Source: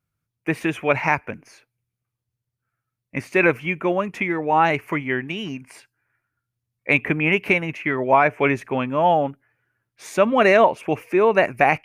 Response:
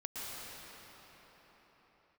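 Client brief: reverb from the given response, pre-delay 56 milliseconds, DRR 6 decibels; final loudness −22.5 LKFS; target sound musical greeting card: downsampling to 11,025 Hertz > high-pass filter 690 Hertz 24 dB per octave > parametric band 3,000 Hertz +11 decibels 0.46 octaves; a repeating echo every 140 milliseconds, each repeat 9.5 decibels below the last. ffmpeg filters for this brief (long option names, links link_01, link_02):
-filter_complex "[0:a]aecho=1:1:140|280|420|560:0.335|0.111|0.0365|0.012,asplit=2[link_01][link_02];[1:a]atrim=start_sample=2205,adelay=56[link_03];[link_02][link_03]afir=irnorm=-1:irlink=0,volume=-8dB[link_04];[link_01][link_04]amix=inputs=2:normalize=0,aresample=11025,aresample=44100,highpass=frequency=690:width=0.5412,highpass=frequency=690:width=1.3066,equalizer=frequency=3000:width_type=o:width=0.46:gain=11,volume=-3dB"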